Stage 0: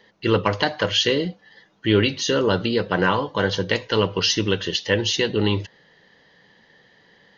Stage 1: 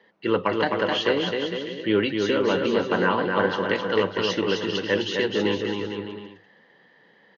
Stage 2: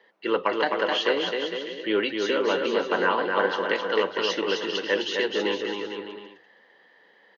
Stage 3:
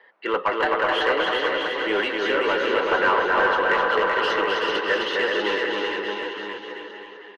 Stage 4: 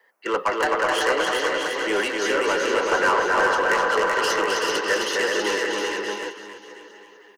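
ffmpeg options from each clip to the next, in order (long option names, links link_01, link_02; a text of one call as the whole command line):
ffmpeg -i in.wav -filter_complex "[0:a]acrossover=split=160 3000:gain=0.141 1 0.2[link_01][link_02][link_03];[link_01][link_02][link_03]amix=inputs=3:normalize=0,aecho=1:1:260|455|601.2|710.9|793.2:0.631|0.398|0.251|0.158|0.1,volume=-2.5dB" out.wav
ffmpeg -i in.wav -af "highpass=360" out.wav
ffmpeg -i in.wav -filter_complex "[0:a]asplit=2[link_01][link_02];[link_02]highpass=frequency=720:poles=1,volume=16dB,asoftclip=type=tanh:threshold=-8.5dB[link_03];[link_01][link_03]amix=inputs=2:normalize=0,lowpass=frequency=1400:poles=1,volume=-6dB,equalizer=frequency=1600:width_type=o:width=2:gain=6,aecho=1:1:380|722|1030|1307|1556:0.631|0.398|0.251|0.158|0.1,volume=-5dB" out.wav
ffmpeg -i in.wav -filter_complex "[0:a]agate=range=-7dB:threshold=-29dB:ratio=16:detection=peak,acrossover=split=280|330|1100[link_01][link_02][link_03][link_04];[link_04]aexciter=amount=6.4:drive=8.4:freq=5300[link_05];[link_01][link_02][link_03][link_05]amix=inputs=4:normalize=0" out.wav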